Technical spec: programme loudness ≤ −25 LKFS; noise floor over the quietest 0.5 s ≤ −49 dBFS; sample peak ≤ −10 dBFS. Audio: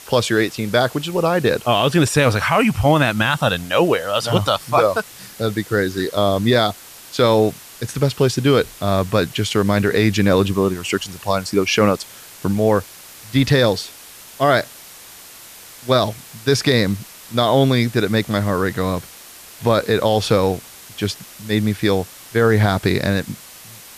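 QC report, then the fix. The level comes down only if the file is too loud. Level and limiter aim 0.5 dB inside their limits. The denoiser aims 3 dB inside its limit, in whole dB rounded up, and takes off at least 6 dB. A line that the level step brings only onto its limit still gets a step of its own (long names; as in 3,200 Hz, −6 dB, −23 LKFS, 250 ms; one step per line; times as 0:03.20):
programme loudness −18.5 LKFS: out of spec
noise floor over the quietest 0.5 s −41 dBFS: out of spec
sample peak −4.0 dBFS: out of spec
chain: broadband denoise 6 dB, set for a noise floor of −41 dBFS
level −7 dB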